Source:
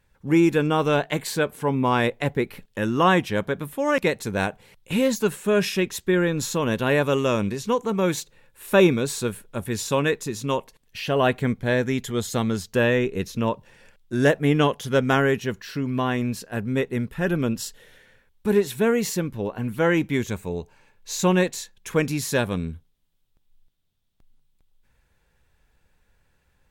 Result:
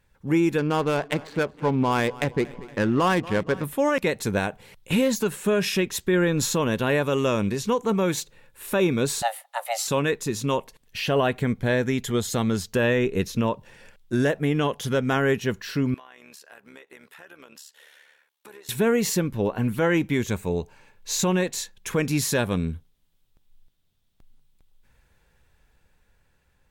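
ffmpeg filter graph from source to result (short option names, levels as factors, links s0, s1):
-filter_complex "[0:a]asettb=1/sr,asplit=3[s0][s1][s2];[s0]atrim=end=0.584[s3];[s1]atrim=start=0.58:end=3.64,asetpts=PTS-STARTPTS,afade=t=in:d=0.004:c=qsin,afade=t=out:st=3.056:d=0.004:c=qsin,adynamicsmooth=sensitivity=3:basefreq=790,aecho=1:1:233|466|699|932:0.0794|0.0437|0.024|0.0132,atrim=end_sample=134946[s4];[s2]atrim=start=3.636[s5];[s3][s4]acrossfade=d=0.004:c1=hsin:c2=qsin[s6];[s6][s5]acrossfade=d=0.004:c1=qsin:c2=hsin,asettb=1/sr,asplit=3[s7][s8][s9];[s7]atrim=end=9.224[s10];[s8]atrim=start=9.22:end=9.88,asetpts=PTS-STARTPTS,afade=t=in:d=0.004:c=qsin,afade=t=out:st=0.656:d=0.004:c=qsin,highpass=f=260:w=0.5412,highpass=f=260:w=1.3066,afreqshift=340[s11];[s9]atrim=start=9.876[s12];[s10][s11]acrossfade=d=0.004:c1=hsin:c2=qsin[s13];[s13][s12]acrossfade=d=0.004:c1=qsin:c2=hsin,asettb=1/sr,asplit=3[s14][s15][s16];[s14]atrim=end=15.944[s17];[s15]atrim=start=15.94:end=18.69,asetpts=PTS-STARTPTS,afade=t=in:d=0.004:c=qsin,afade=t=out:st=2.746:d=0.004:c=qsin,highpass=750,acompressor=threshold=0.00631:ratio=8:attack=3.2:release=140:knee=1:detection=peak,tremolo=f=72:d=0.667[s18];[s16]atrim=start=18.686[s19];[s17][s18]acrossfade=d=0.004:c1=hsin:c2=qsin[s20];[s20][s19]acrossfade=d=0.004:c1=qsin:c2=hsin,dynaudnorm=f=380:g=9:m=1.58,alimiter=limit=0.237:level=0:latency=1:release=185"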